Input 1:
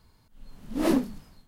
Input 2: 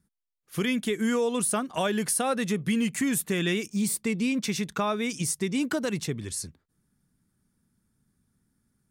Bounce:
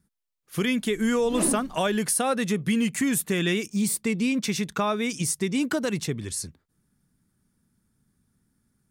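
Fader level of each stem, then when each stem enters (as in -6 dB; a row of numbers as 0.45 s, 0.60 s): -4.5 dB, +2.0 dB; 0.55 s, 0.00 s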